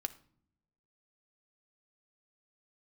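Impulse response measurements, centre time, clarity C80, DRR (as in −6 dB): 3 ms, 20.5 dB, 9.0 dB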